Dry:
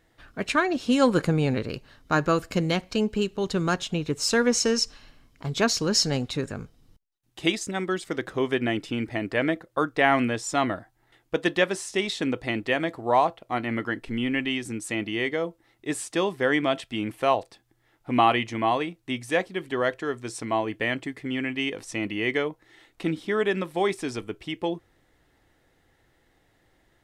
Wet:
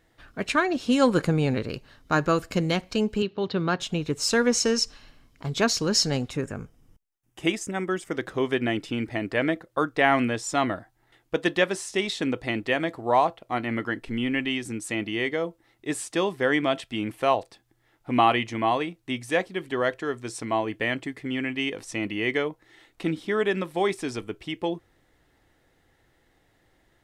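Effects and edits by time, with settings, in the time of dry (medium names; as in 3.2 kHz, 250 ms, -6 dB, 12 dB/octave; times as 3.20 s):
3.22–3.80 s: elliptic band-pass 100–4300 Hz
6.30–8.16 s: peaking EQ 4.1 kHz -13.5 dB 0.43 oct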